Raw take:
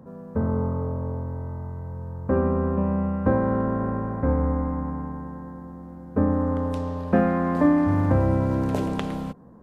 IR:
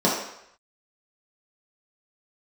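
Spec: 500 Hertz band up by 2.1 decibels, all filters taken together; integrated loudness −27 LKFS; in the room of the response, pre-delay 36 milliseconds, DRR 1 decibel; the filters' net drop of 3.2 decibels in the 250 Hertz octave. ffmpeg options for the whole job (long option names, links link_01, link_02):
-filter_complex "[0:a]equalizer=frequency=250:width_type=o:gain=-5,equalizer=frequency=500:width_type=o:gain=3.5,asplit=2[link_01][link_02];[1:a]atrim=start_sample=2205,adelay=36[link_03];[link_02][link_03]afir=irnorm=-1:irlink=0,volume=-18.5dB[link_04];[link_01][link_04]amix=inputs=2:normalize=0,volume=-7dB"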